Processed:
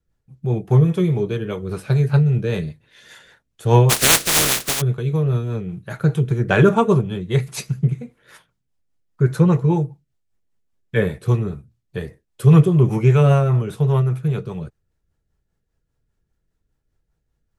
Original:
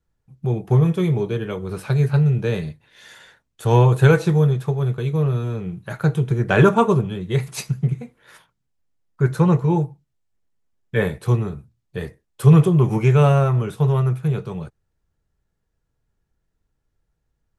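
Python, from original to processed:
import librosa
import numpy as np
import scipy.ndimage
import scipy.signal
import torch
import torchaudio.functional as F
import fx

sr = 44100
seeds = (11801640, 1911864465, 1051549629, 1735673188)

y = fx.spec_flatten(x, sr, power=0.11, at=(3.89, 4.8), fade=0.02)
y = fx.rotary(y, sr, hz=5.0)
y = y * 10.0 ** (2.5 / 20.0)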